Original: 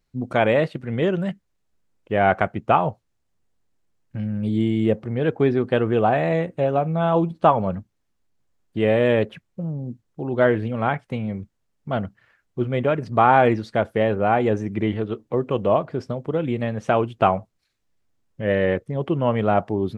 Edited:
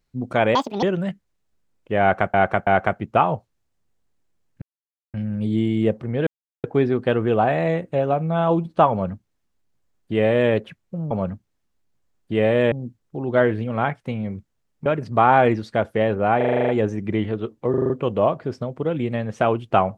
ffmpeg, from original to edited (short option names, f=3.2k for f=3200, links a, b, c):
-filter_complex "[0:a]asplit=23[a][b][c][d][e][f][g][h][i][j][k][l][m][n][o][p][q][r][s][t][u][v][w];[a]atrim=end=0.554[x];[b]atrim=start=0.55:end=1.03,asetpts=PTS-STARTPTS,asetrate=76293,aresample=44100[y];[c]atrim=start=1.026:end=2.542[z];[d]atrim=start=2.208:end=2.542[aa];[e]atrim=start=2.208:end=4.16,asetpts=PTS-STARTPTS,afade=t=out:st=1.948:d=0.004:c=hsin,apad=pad_dur=0.52[ab];[f]atrim=start=4.16:end=5.29,asetpts=PTS-STARTPTS,afade=t=in:d=0.004:c=hsin,afade=t=out:st=1.126:d=0.004:c=hsin,apad=pad_dur=0.37[ac];[g]atrim=start=5.29:end=9.762,asetpts=PTS-STARTPTS,afade=t=in:d=0.004:c=hsin[ad];[h]atrim=start=7.558:end=9.172[ae];[i]atrim=start=9.758:end=11.902[af];[j]atrim=start=12.858:end=14.412[ag];[k]atrim=start=14.368:end=14.412[ah];[l]atrim=start=14.368:end=14.412[ai];[m]atrim=start=14.368:end=14.412[aj];[n]atrim=start=14.368:end=14.412[ak];[o]atrim=start=14.368:end=14.412[al];[p]atrim=start=14.368:end=14.412[am];[q]atrim=start=14.368:end=14.412[an];[r]atrim=start=14.368:end=15.422[ao];[s]atrim=start=15.378:end=15.422[ap];[t]atrim=start=15.378:end=15.422[aq];[u]atrim=start=15.378:end=15.422[ar];[v]atrim=start=15.378:end=15.422[as];[w]atrim=start=15.378[at];[x][y]acrossfade=d=0.004:c1=hsin:c2=hsin[au];[au][z]acrossfade=d=0.004:c1=hsin:c2=hsin[av];[av][aa]acrossfade=d=0.004:c1=hsin:c2=hsin[aw];[ab][ac][ad]concat=n=3:v=0:a=1[ax];[aw][ax]acrossfade=d=0.004:c1=hsin:c2=hsin[ay];[ay][ae]acrossfade=d=0.004:c1=hsin:c2=hsin[az];[az][af]acrossfade=d=0.004:c1=hsin:c2=hsin[ba];[ba][ag]acrossfade=d=0.004:c1=hsin:c2=hsin[bb];[bb][ah]acrossfade=d=0.004:c1=hsin:c2=hsin[bc];[bc][ai]acrossfade=d=0.004:c1=hsin:c2=hsin[bd];[bd][aj]acrossfade=d=0.004:c1=hsin:c2=hsin[be];[be][ak]acrossfade=d=0.004:c1=hsin:c2=hsin[bf];[bf][al]acrossfade=d=0.004:c1=hsin:c2=hsin[bg];[bg][am]acrossfade=d=0.004:c1=hsin:c2=hsin[bh];[bh][an]acrossfade=d=0.004:c1=hsin:c2=hsin[bi];[bi][ao]acrossfade=d=0.004:c1=hsin:c2=hsin[bj];[bj][ap]acrossfade=d=0.004:c1=hsin:c2=hsin[bk];[bk][aq]acrossfade=d=0.004:c1=hsin:c2=hsin[bl];[bl][ar]acrossfade=d=0.004:c1=hsin:c2=hsin[bm];[bm][as]acrossfade=d=0.004:c1=hsin:c2=hsin[bn];[bn][at]acrossfade=d=0.004:c1=hsin:c2=hsin"